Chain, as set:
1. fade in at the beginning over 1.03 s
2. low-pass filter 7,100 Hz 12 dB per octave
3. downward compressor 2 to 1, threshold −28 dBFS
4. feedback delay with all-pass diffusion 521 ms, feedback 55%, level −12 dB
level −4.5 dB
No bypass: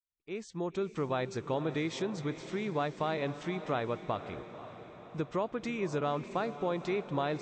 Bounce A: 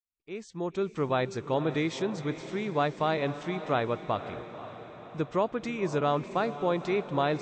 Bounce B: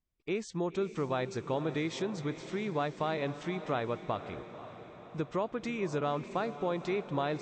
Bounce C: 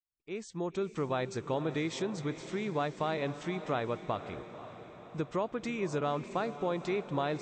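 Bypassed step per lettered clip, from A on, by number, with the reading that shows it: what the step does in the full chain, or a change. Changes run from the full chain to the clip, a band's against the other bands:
3, average gain reduction 3.0 dB
1, change in momentary loudness spread −3 LU
2, 8 kHz band +2.5 dB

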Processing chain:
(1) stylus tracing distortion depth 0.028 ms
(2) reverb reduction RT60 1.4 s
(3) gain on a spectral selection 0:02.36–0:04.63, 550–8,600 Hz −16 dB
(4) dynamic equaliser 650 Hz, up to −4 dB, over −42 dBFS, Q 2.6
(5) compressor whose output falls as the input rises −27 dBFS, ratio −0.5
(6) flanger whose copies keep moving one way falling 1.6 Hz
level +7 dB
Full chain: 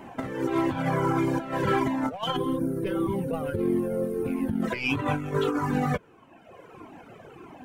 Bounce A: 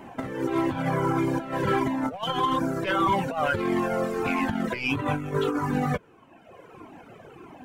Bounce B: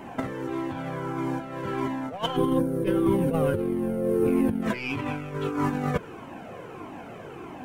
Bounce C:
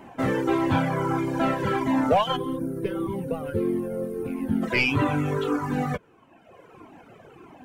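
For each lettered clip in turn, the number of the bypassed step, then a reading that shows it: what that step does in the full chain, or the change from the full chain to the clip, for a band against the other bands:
3, change in momentary loudness spread −11 LU
2, 2 kHz band −2.5 dB
5, change in momentary loudness spread −6 LU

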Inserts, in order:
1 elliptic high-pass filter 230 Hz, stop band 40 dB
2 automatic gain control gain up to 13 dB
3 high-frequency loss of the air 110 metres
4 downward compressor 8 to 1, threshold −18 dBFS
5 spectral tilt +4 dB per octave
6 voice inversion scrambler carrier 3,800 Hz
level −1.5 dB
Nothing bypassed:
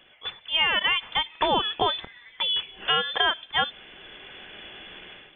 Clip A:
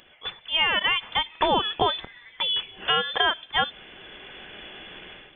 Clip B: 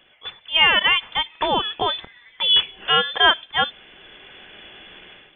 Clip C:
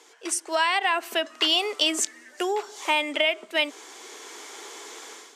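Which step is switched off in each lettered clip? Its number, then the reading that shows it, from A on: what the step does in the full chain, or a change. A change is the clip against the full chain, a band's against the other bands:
3, 4 kHz band −2.0 dB
4, average gain reduction 2.0 dB
6, 250 Hz band +5.5 dB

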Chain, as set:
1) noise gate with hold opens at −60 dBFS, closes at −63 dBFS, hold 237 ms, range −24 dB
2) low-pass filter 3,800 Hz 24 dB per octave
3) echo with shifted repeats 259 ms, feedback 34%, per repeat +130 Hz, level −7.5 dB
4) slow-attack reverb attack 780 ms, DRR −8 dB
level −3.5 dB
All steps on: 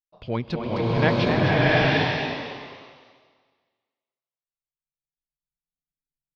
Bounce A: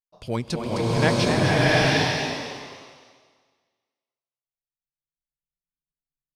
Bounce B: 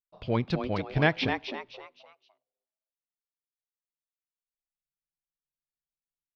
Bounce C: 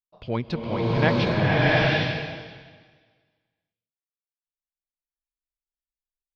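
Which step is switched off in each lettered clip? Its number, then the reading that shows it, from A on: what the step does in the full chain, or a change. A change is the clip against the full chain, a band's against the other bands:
2, 4 kHz band +3.0 dB
4, echo-to-direct ratio 9.0 dB to −7.0 dB
3, change in momentary loudness spread −3 LU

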